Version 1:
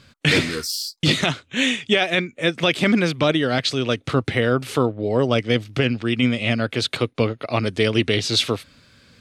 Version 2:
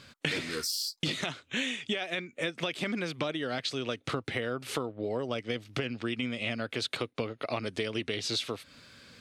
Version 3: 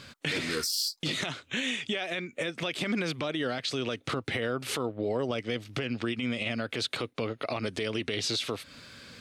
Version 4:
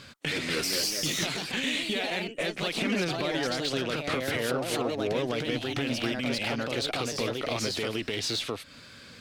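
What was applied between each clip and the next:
low shelf 160 Hz -9 dB; compressor 10:1, threshold -29 dBFS, peak gain reduction 15.5 dB
limiter -25.5 dBFS, peak gain reduction 10 dB; gain +5 dB
added harmonics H 6 -26 dB, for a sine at -20 dBFS; echoes that change speed 0.267 s, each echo +2 st, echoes 2

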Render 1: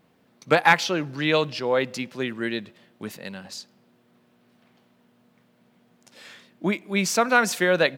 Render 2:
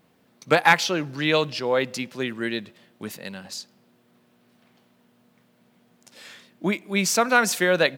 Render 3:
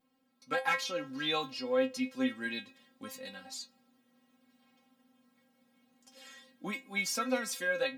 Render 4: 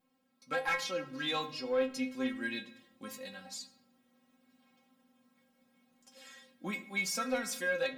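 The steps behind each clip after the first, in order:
high shelf 5100 Hz +5 dB
metallic resonator 260 Hz, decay 0.21 s, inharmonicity 0.002; vocal rider within 3 dB 0.5 s; gain +2 dB
soft clip -22 dBFS, distortion -20 dB; shoebox room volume 2600 m³, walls furnished, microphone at 0.99 m; gain -1 dB

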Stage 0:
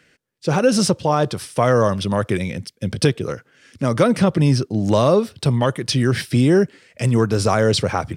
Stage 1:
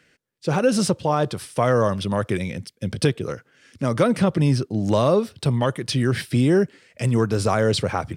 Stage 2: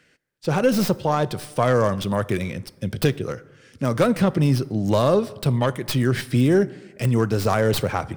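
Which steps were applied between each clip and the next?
dynamic EQ 5600 Hz, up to -4 dB, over -41 dBFS, Q 3; gain -3 dB
tracing distortion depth 0.16 ms; plate-style reverb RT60 1.3 s, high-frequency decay 0.45×, DRR 17.5 dB

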